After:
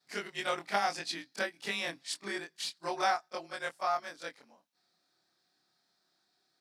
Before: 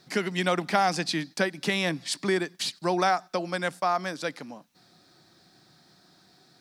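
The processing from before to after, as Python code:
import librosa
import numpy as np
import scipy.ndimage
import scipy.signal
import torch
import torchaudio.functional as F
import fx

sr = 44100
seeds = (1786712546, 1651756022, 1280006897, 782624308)

y = fx.frame_reverse(x, sr, frame_ms=60.0)
y = fx.highpass(y, sr, hz=640.0, slope=6)
y = fx.upward_expand(y, sr, threshold_db=-50.0, expansion=1.5)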